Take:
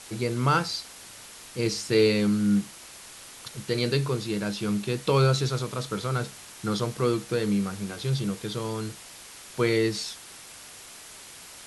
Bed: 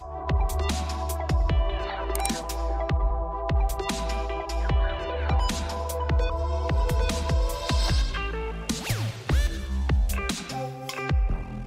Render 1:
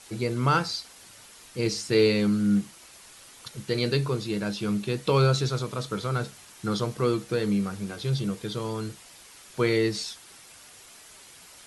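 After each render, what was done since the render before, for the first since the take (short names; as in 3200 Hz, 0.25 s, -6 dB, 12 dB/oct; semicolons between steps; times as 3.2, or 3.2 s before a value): denoiser 6 dB, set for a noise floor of -46 dBFS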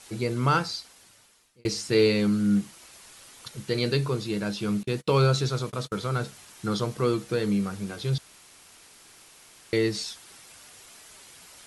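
0.52–1.65 fade out; 4.83–5.93 gate -38 dBFS, range -31 dB; 8.18–9.73 room tone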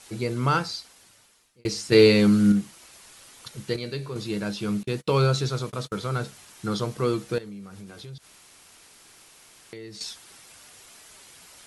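1.92–2.52 gain +5.5 dB; 3.76–4.16 resonator 100 Hz, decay 1.7 s; 7.38–10.01 compressor 4:1, threshold -40 dBFS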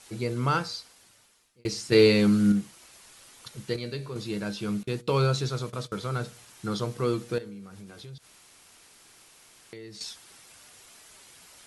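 resonator 120 Hz, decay 0.63 s, harmonics all, mix 30%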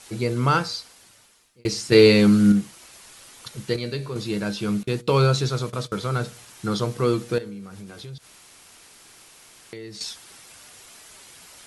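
gain +5.5 dB; limiter -3 dBFS, peak gain reduction 1 dB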